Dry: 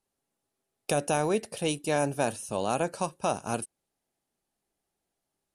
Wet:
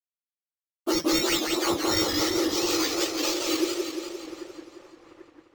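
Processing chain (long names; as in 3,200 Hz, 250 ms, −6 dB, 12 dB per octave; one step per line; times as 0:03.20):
frequency axis turned over on the octave scale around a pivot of 1,800 Hz
in parallel at +2.5 dB: brickwall limiter −26 dBFS, peak gain reduction 9 dB
on the sum: bad sample-rate conversion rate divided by 4×, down none, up hold
on a send: echo with a time of its own for lows and highs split 2,000 Hz, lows 788 ms, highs 170 ms, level −14 dB
on the sum: dead-zone distortion −53 dBFS
feedback echo with a swinging delay time 174 ms, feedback 62%, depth 161 cents, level −4 dB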